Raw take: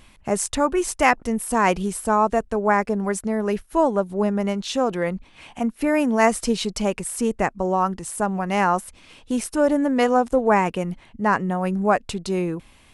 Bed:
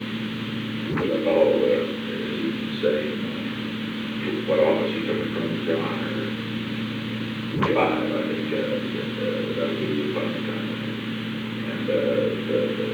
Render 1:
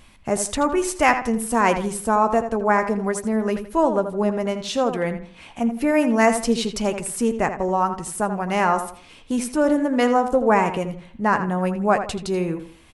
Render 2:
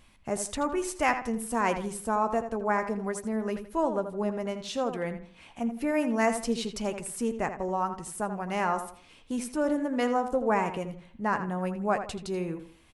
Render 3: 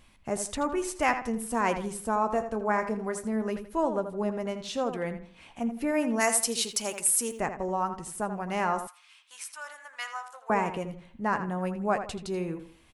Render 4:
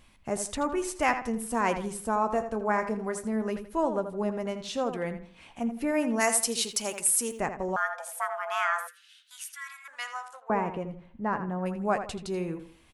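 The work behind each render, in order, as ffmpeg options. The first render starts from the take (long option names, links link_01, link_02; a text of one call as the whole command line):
ffmpeg -i in.wav -filter_complex "[0:a]asplit=2[link_01][link_02];[link_02]adelay=13,volume=-12.5dB[link_03];[link_01][link_03]amix=inputs=2:normalize=0,asplit=2[link_04][link_05];[link_05]adelay=82,lowpass=frequency=3100:poles=1,volume=-9dB,asplit=2[link_06][link_07];[link_07]adelay=82,lowpass=frequency=3100:poles=1,volume=0.33,asplit=2[link_08][link_09];[link_09]adelay=82,lowpass=frequency=3100:poles=1,volume=0.33,asplit=2[link_10][link_11];[link_11]adelay=82,lowpass=frequency=3100:poles=1,volume=0.33[link_12];[link_04][link_06][link_08][link_10][link_12]amix=inputs=5:normalize=0" out.wav
ffmpeg -i in.wav -af "volume=-8.5dB" out.wav
ffmpeg -i in.wav -filter_complex "[0:a]asettb=1/sr,asplit=3[link_01][link_02][link_03];[link_01]atrim=end=2.324[link_04];[link_02]atrim=start=2.32:end=3.42,asetpts=PTS-STARTPTS,afade=type=in:duration=0.004:curve=qsin,afade=type=out:start_time=1.096:duration=0.004:curve=qsin,asplit=2[link_05][link_06];[link_06]adelay=28,volume=-11.5dB[link_07];[link_05][link_07]amix=inputs=2:normalize=0,atrim=end_sample=48510[link_08];[link_03]atrim=start=3.416[link_09];[link_04][link_08]acrossfade=duration=0.004:curve1=hsin:curve2=qsin[link_10];[link_10][link_09]acrossfade=duration=0.004:curve1=qsin:curve2=hsin,asplit=3[link_11][link_12][link_13];[link_11]afade=type=out:start_time=6.19:duration=0.02[link_14];[link_12]aemphasis=mode=production:type=riaa,afade=type=in:start_time=6.19:duration=0.02,afade=type=out:start_time=7.39:duration=0.02[link_15];[link_13]afade=type=in:start_time=7.39:duration=0.02[link_16];[link_14][link_15][link_16]amix=inputs=3:normalize=0,asettb=1/sr,asplit=3[link_17][link_18][link_19];[link_17]atrim=end=8.874[link_20];[link_18]atrim=start=8.87:end=10.5,asetpts=PTS-STARTPTS,afade=type=in:duration=0.004:curve=qsin,afade=type=out:start_time=1.626:duration=0.004:curve=qsin,highpass=frequency=1100:width=0.5412,highpass=frequency=1100:width=1.3066[link_21];[link_19]atrim=start=10.496[link_22];[link_20][link_21]acrossfade=duration=0.004:curve1=hsin:curve2=qsin[link_23];[link_23][link_22]acrossfade=duration=0.004:curve1=qsin:curve2=hsin" out.wav
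ffmpeg -i in.wav -filter_complex "[0:a]asettb=1/sr,asplit=3[link_01][link_02][link_03];[link_01]atrim=end=7.764[link_04];[link_02]atrim=start=7.76:end=9.88,asetpts=PTS-STARTPTS,afade=type=in:duration=0.004:curve=qsin,afade=type=out:start_time=2.116:duration=0.004:curve=qsin,afreqshift=490[link_05];[link_03]atrim=start=9.876[link_06];[link_04][link_05]acrossfade=duration=0.004:curve1=hsin:curve2=qsin[link_07];[link_07][link_06]acrossfade=duration=0.004:curve1=qsin:curve2=hsin,asettb=1/sr,asplit=3[link_08][link_09][link_10];[link_08]atrim=end=10.404[link_11];[link_09]atrim=start=10.4:end=11.66,asetpts=PTS-STARTPTS,afade=type=in:duration=0.004:curve=qsin,afade=type=out:start_time=1.256:duration=0.004:curve=qsin,lowpass=frequency=1300:poles=1[link_12];[link_10]atrim=start=11.656[link_13];[link_11][link_12]acrossfade=duration=0.004:curve1=hsin:curve2=qsin[link_14];[link_14][link_13]acrossfade=duration=0.004:curve1=qsin:curve2=hsin" out.wav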